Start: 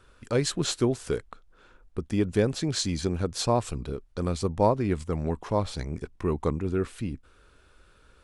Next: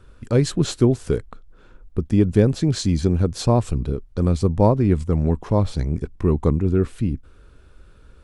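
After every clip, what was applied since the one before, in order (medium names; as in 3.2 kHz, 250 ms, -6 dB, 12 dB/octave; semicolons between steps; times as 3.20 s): bass shelf 410 Hz +12 dB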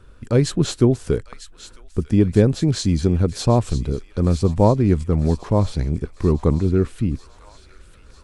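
feedback echo behind a high-pass 949 ms, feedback 63%, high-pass 1.7 kHz, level -12 dB; trim +1 dB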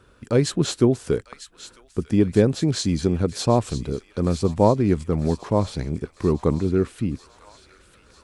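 high-pass 180 Hz 6 dB/octave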